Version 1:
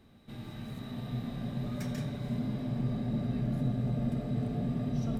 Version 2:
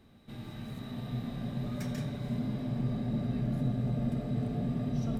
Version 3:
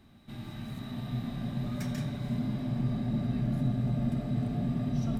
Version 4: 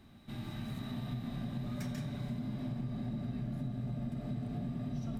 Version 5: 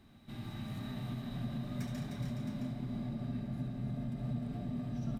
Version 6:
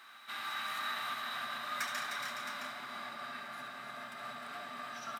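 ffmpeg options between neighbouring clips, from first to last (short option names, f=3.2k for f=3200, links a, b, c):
-af anull
-af "equalizer=f=470:w=4.1:g=-10,volume=2dB"
-af "acompressor=threshold=-35dB:ratio=6"
-af "aecho=1:1:71|306|419|666:0.376|0.473|0.398|0.335,volume=-2.5dB"
-af "highpass=f=1.3k:t=q:w=3,volume=11.5dB"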